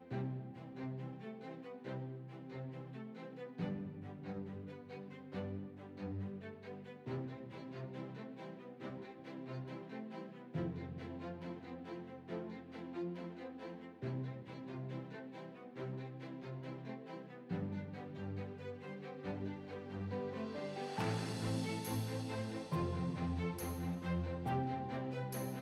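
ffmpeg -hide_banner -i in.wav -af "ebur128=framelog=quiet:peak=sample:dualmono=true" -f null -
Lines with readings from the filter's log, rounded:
Integrated loudness:
  I:         -41.3 LUFS
  Threshold: -51.3 LUFS
Loudness range:
  LRA:         7.4 LU
  Threshold: -61.6 LUFS
  LRA low:   -44.4 LUFS
  LRA high:  -37.0 LUFS
Sample peak:
  Peak:      -27.4 dBFS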